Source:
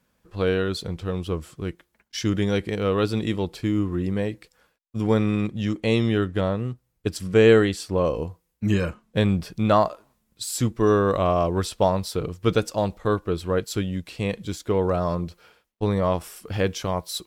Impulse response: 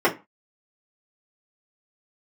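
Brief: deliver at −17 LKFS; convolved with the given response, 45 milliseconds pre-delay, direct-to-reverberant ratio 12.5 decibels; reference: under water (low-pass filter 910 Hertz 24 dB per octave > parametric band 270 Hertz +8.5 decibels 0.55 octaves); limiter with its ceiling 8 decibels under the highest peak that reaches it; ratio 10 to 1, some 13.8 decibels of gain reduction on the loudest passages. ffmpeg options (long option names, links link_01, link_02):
-filter_complex "[0:a]acompressor=threshold=-25dB:ratio=10,alimiter=limit=-22.5dB:level=0:latency=1,asplit=2[link_01][link_02];[1:a]atrim=start_sample=2205,adelay=45[link_03];[link_02][link_03]afir=irnorm=-1:irlink=0,volume=-31dB[link_04];[link_01][link_04]amix=inputs=2:normalize=0,lowpass=frequency=910:width=0.5412,lowpass=frequency=910:width=1.3066,equalizer=frequency=270:width_type=o:width=0.55:gain=8.5,volume=15dB"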